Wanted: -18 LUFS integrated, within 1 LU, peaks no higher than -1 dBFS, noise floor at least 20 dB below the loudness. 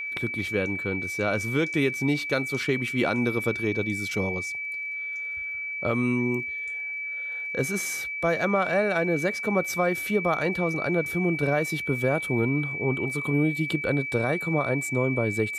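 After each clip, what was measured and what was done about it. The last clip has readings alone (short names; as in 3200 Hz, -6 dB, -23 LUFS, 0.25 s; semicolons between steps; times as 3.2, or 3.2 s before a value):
ticks 29/s; steady tone 2300 Hz; tone level -30 dBFS; loudness -26.0 LUFS; peak -12.0 dBFS; loudness target -18.0 LUFS
-> de-click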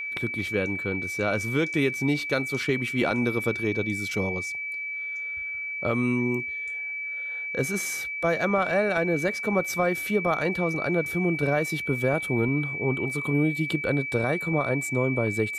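ticks 0.064/s; steady tone 2300 Hz; tone level -30 dBFS
-> notch 2300 Hz, Q 30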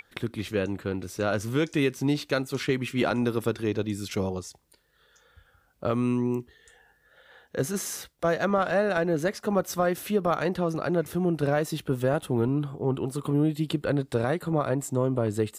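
steady tone none; loudness -27.5 LUFS; peak -12.5 dBFS; loudness target -18.0 LUFS
-> gain +9.5 dB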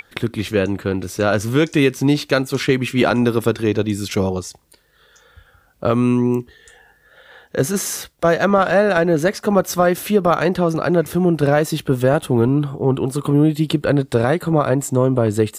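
loudness -18.0 LUFS; peak -3.0 dBFS; noise floor -56 dBFS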